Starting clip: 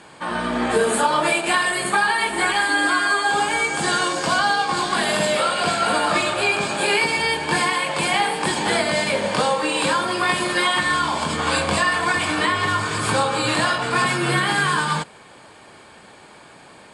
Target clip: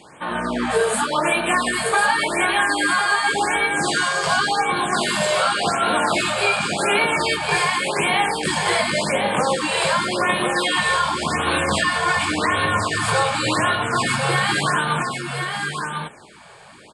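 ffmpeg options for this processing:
ffmpeg -i in.wav -af "aecho=1:1:1049:0.531,afftfilt=real='re*(1-between(b*sr/1024,240*pow(6300/240,0.5+0.5*sin(2*PI*0.89*pts/sr))/1.41,240*pow(6300/240,0.5+0.5*sin(2*PI*0.89*pts/sr))*1.41))':imag='im*(1-between(b*sr/1024,240*pow(6300/240,0.5+0.5*sin(2*PI*0.89*pts/sr))/1.41,240*pow(6300/240,0.5+0.5*sin(2*PI*0.89*pts/sr))*1.41))':win_size=1024:overlap=0.75" out.wav

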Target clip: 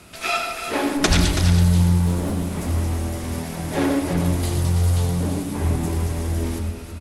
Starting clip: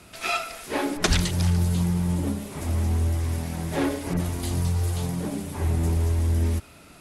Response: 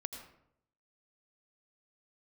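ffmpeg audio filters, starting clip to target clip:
-filter_complex "[0:a]asettb=1/sr,asplit=3[link_01][link_02][link_03];[link_01]atrim=end=2.064[link_04];[link_02]atrim=start=2.06:end=2.67,asetpts=PTS-STARTPTS,afade=type=in:duration=0.004:curve=qsin,afade=type=out:start_time=0.606:duration=0.004:curve=qsin,aeval=exprs='0.0708*(abs(mod(val(0)/0.0708+3,4)-2)-1)':channel_layout=same[link_05];[link_03]atrim=start=2.666[link_06];[link_04][link_05]acrossfade=duration=0.004:curve1=hsin:curve2=qsin[link_07];[link_07][link_06]acrossfade=duration=0.004:curve1=qsin:curve2=hsin,aecho=1:1:329:0.355[link_08];[1:a]atrim=start_sample=2205[link_09];[link_08][link_09]afir=irnorm=-1:irlink=0,volume=5.5dB"

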